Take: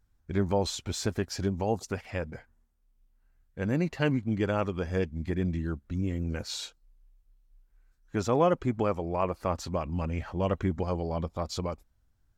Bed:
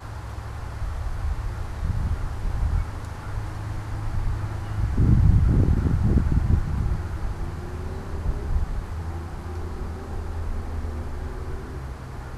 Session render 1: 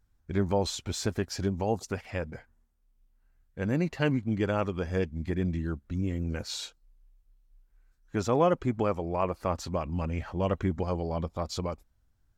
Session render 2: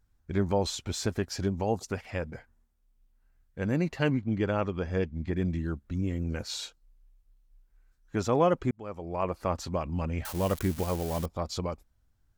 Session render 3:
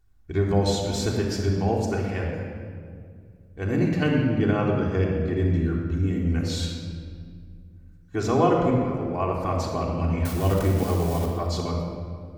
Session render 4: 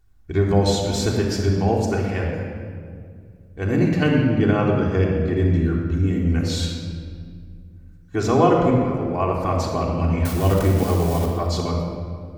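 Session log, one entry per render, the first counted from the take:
no audible change
4.10–5.36 s: distance through air 77 m; 8.71–9.33 s: fade in; 10.25–11.26 s: zero-crossing glitches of -26.5 dBFS
simulated room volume 3800 m³, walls mixed, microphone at 3.4 m
trim +4 dB

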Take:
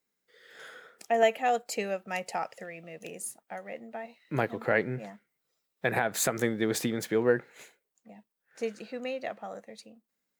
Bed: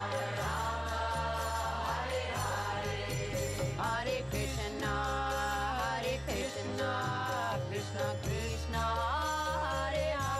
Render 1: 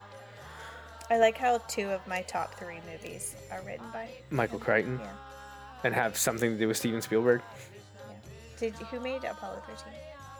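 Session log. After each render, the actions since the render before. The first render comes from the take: add bed -13.5 dB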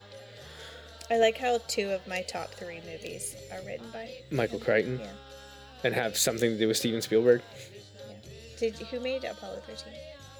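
graphic EQ 500/1000/4000 Hz +6/-12/+9 dB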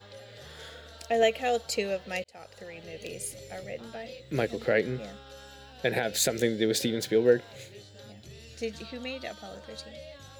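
2.24–3.15 s: fade in equal-power; 5.49–7.43 s: Butterworth band-stop 1.2 kHz, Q 5.9; 8.00–9.60 s: peaking EQ 510 Hz -9 dB 0.37 oct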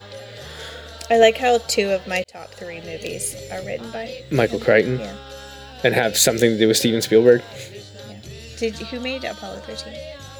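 trim +10.5 dB; peak limiter -2 dBFS, peak gain reduction 2.5 dB

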